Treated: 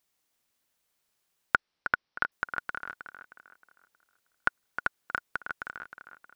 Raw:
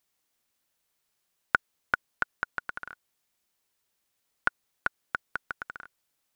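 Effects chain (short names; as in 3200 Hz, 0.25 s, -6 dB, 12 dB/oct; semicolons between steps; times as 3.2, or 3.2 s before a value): 1.55–2.32 Chebyshev low-pass 5600 Hz, order 6; on a send: tape echo 0.314 s, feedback 41%, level -8 dB, low-pass 3600 Hz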